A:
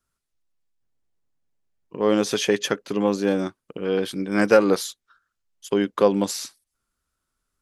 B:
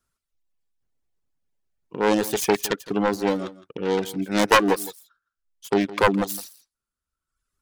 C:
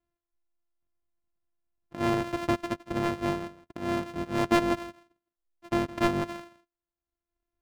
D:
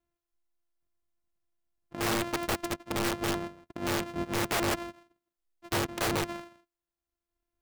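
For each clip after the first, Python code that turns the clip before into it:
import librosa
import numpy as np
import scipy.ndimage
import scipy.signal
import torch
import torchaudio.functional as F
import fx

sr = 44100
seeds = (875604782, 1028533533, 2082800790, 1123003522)

y1 = fx.self_delay(x, sr, depth_ms=0.77)
y1 = fx.dereverb_blind(y1, sr, rt60_s=1.1)
y1 = y1 + 10.0 ** (-17.5 / 20.0) * np.pad(y1, (int(163 * sr / 1000.0), 0))[:len(y1)]
y1 = F.gain(torch.from_numpy(y1), 1.5).numpy()
y2 = np.r_[np.sort(y1[:len(y1) // 128 * 128].reshape(-1, 128), axis=1).ravel(), y1[len(y1) // 128 * 128:]]
y2 = fx.lowpass(y2, sr, hz=1800.0, slope=6)
y2 = F.gain(torch.from_numpy(y2), -5.5).numpy()
y3 = (np.mod(10.0 ** (22.5 / 20.0) * y2 + 1.0, 2.0) - 1.0) / 10.0 ** (22.5 / 20.0)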